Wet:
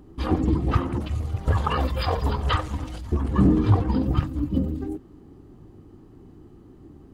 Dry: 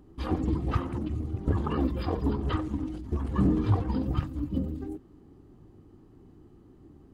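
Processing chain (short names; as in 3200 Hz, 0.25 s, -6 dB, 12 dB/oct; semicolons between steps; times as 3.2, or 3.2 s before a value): 1–3.12 EQ curve 100 Hz 0 dB, 340 Hz -13 dB, 500 Hz +2 dB, 4400 Hz +8 dB; gain +6 dB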